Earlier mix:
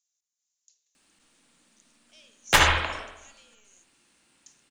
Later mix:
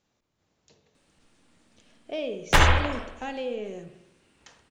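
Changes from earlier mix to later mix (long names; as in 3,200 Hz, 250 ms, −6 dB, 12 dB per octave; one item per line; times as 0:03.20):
speech: remove resonant band-pass 6,700 Hz, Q 3.6
master: add spectral tilt −2 dB per octave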